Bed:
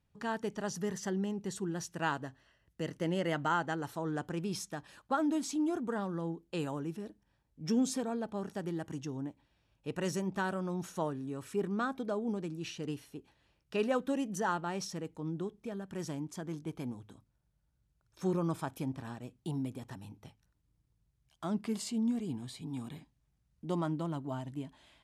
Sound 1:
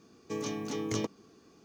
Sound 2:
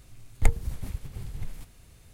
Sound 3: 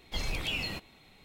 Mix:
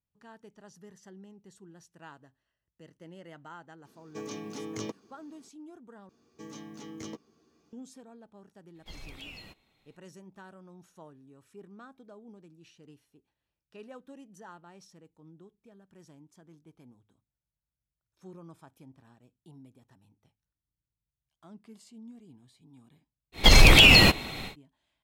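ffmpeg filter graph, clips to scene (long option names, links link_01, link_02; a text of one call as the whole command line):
ffmpeg -i bed.wav -i cue0.wav -i cue1.wav -i cue2.wav -filter_complex "[1:a]asplit=2[link_01][link_02];[3:a]asplit=2[link_03][link_04];[0:a]volume=-16dB[link_05];[link_01]highpass=110[link_06];[link_02]asplit=2[link_07][link_08];[link_08]adelay=13,volume=-4dB[link_09];[link_07][link_09]amix=inputs=2:normalize=0[link_10];[link_04]alimiter=level_in=24dB:limit=-1dB:release=50:level=0:latency=1[link_11];[link_05]asplit=2[link_12][link_13];[link_12]atrim=end=6.094[link_14];[link_10]atrim=end=1.64,asetpts=PTS-STARTPTS,volume=-10dB[link_15];[link_13]atrim=start=7.726[link_16];[link_06]atrim=end=1.64,asetpts=PTS-STARTPTS,volume=-4dB,afade=type=in:duration=0.004:curve=hsin,afade=type=out:start_time=1.636:duration=0.004:curve=hsin,adelay=169785S[link_17];[link_03]atrim=end=1.24,asetpts=PTS-STARTPTS,volume=-12.5dB,afade=type=in:duration=0.02,afade=type=out:start_time=1.22:duration=0.02,adelay=385434S[link_18];[link_11]atrim=end=1.24,asetpts=PTS-STARTPTS,volume=-3.5dB,afade=type=in:duration=0.1,afade=type=out:start_time=1.14:duration=0.1,adelay=23320[link_19];[link_14][link_15]acrossfade=duration=0.004:curve1=hsin:curve2=hsin[link_20];[link_20][link_16]acrossfade=duration=0.004:curve1=hsin:curve2=hsin[link_21];[link_21][link_17][link_18][link_19]amix=inputs=4:normalize=0" out.wav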